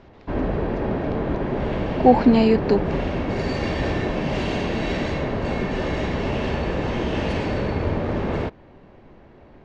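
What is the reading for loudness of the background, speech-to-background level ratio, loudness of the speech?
-25.0 LUFS, 7.0 dB, -18.0 LUFS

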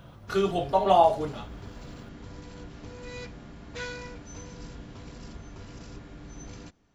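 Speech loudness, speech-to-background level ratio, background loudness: -24.0 LUFS, 19.5 dB, -43.5 LUFS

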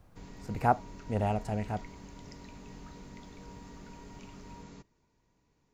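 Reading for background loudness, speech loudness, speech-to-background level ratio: -49.5 LUFS, -32.5 LUFS, 17.0 dB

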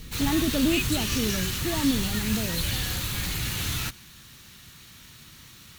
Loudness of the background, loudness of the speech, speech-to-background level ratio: -28.0 LUFS, -28.5 LUFS, -0.5 dB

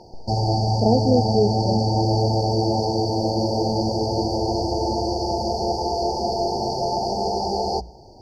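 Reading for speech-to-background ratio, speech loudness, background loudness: -0.5 dB, -23.0 LUFS, -22.5 LUFS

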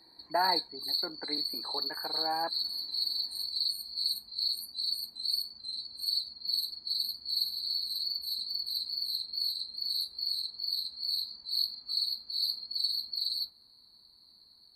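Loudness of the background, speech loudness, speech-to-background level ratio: -31.5 LUFS, -36.5 LUFS, -5.0 dB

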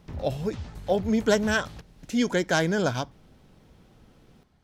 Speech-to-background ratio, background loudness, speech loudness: 15.5 dB, -41.5 LUFS, -26.0 LUFS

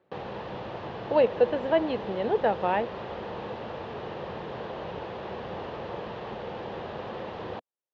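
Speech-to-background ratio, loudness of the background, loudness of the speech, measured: 11.0 dB, -37.5 LUFS, -26.5 LUFS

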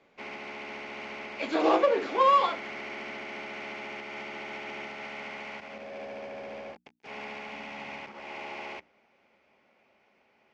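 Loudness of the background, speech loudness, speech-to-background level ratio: -39.5 LUFS, -25.0 LUFS, 14.5 dB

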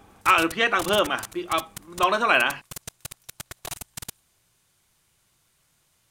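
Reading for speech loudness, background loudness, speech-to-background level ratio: -22.0 LUFS, -38.0 LUFS, 16.0 dB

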